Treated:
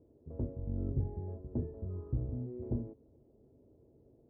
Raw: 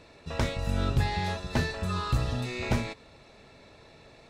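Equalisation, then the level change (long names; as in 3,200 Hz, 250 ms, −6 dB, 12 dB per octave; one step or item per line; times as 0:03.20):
high-pass filter 42 Hz
transistor ladder low-pass 460 Hz, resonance 30%
parametric band 180 Hz −12 dB 0.26 octaves
0.0 dB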